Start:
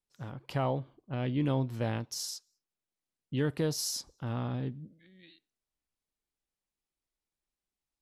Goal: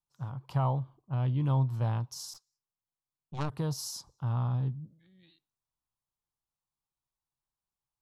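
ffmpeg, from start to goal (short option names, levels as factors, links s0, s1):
-filter_complex "[0:a]asplit=3[s0][s1][s2];[s0]afade=t=out:st=2.33:d=0.02[s3];[s1]aeval=exprs='0.1*(cos(1*acos(clip(val(0)/0.1,-1,1)))-cos(1*PI/2))+0.0447*(cos(3*acos(clip(val(0)/0.1,-1,1)))-cos(3*PI/2))+0.02*(cos(4*acos(clip(val(0)/0.1,-1,1)))-cos(4*PI/2))+0.00398*(cos(5*acos(clip(val(0)/0.1,-1,1)))-cos(5*PI/2))+0.00794*(cos(7*acos(clip(val(0)/0.1,-1,1)))-cos(7*PI/2))':c=same,afade=t=in:st=2.33:d=0.02,afade=t=out:st=3.5:d=0.02[s4];[s2]afade=t=in:st=3.5:d=0.02[s5];[s3][s4][s5]amix=inputs=3:normalize=0,equalizer=f=125:t=o:w=1:g=12,equalizer=f=250:t=o:w=1:g=-5,equalizer=f=500:t=o:w=1:g=-4,equalizer=f=1000:t=o:w=1:g=11,equalizer=f=2000:t=o:w=1:g=-8,volume=0.596"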